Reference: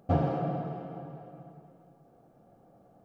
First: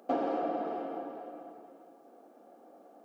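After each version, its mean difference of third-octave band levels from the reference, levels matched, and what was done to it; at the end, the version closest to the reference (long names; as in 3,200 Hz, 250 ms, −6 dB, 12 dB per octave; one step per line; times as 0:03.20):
7.0 dB: Butterworth high-pass 240 Hz 48 dB per octave
downward compressor 2.5 to 1, threshold −35 dBFS, peak gain reduction 7 dB
level +5 dB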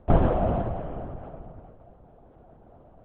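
3.0 dB: bad sample-rate conversion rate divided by 4×, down filtered, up hold
linear-prediction vocoder at 8 kHz whisper
level +7.5 dB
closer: second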